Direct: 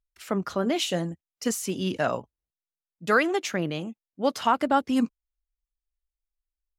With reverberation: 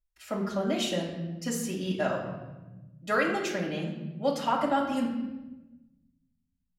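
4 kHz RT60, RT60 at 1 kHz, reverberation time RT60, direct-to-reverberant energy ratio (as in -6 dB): 0.85 s, 1.0 s, 1.1 s, -4.5 dB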